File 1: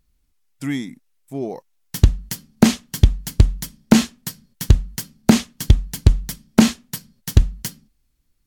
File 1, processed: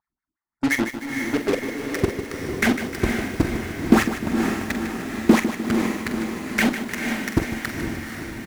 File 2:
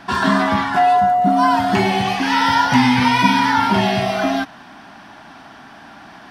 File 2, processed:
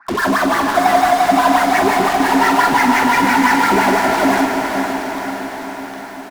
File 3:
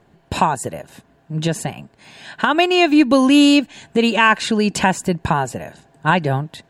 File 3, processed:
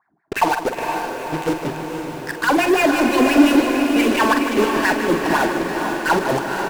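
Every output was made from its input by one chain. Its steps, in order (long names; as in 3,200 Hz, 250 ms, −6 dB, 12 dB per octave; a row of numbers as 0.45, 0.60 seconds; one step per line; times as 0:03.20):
LFO wah 5.8 Hz 300–2,100 Hz, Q 5.2
phaser swept by the level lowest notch 500 Hz, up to 4,500 Hz, full sweep at −22.5 dBFS
in parallel at −10 dB: fuzz pedal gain 49 dB, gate −40 dBFS
on the sum: double-tracking delay 45 ms −10 dB
on a send: feedback delay with all-pass diffusion 486 ms, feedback 62%, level −5 dB
on the sum: feedback echo at a low word length 152 ms, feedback 55%, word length 7 bits, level −10 dB
normalise the peak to −1.5 dBFS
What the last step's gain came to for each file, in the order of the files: +5.5, +4.5, +3.0 decibels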